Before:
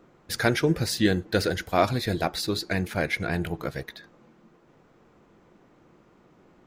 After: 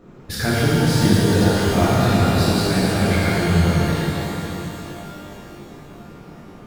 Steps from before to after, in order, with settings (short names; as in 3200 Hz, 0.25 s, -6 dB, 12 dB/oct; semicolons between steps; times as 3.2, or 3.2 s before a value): compressor 2:1, threshold -36 dBFS, peak gain reduction 11.5 dB; low shelf 240 Hz +11.5 dB; shimmer reverb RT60 3.4 s, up +12 st, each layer -8 dB, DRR -9 dB; gain +2 dB